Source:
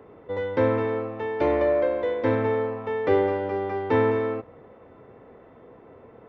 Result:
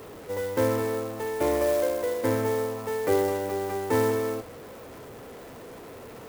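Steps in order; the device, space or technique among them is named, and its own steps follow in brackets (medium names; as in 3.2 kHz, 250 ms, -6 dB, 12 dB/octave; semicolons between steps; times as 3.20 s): early CD player with a faulty converter (jump at every zero crossing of -37.5 dBFS; sampling jitter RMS 0.041 ms); trim -3 dB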